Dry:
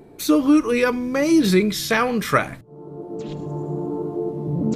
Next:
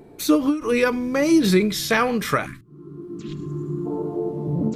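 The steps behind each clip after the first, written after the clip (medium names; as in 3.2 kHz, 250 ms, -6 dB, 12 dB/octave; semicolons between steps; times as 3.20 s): time-frequency box 2.45–3.86 s, 410–1000 Hz -24 dB; endings held to a fixed fall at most 150 dB/s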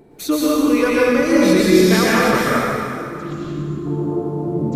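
plate-style reverb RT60 2.6 s, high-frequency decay 0.7×, pre-delay 105 ms, DRR -7 dB; trim -2 dB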